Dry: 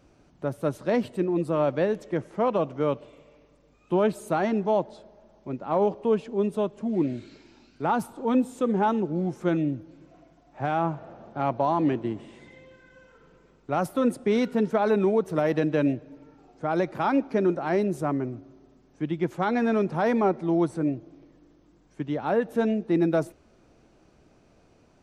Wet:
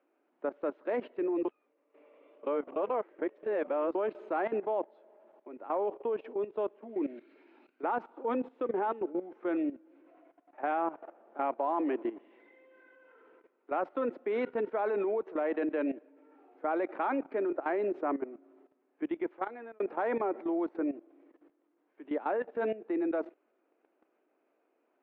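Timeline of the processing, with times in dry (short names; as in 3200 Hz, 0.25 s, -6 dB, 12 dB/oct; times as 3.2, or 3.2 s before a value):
1.45–3.95 reverse
19.15–19.8 fade out
whole clip: steep high-pass 290 Hz 36 dB/oct; level quantiser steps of 15 dB; LPF 2500 Hz 24 dB/oct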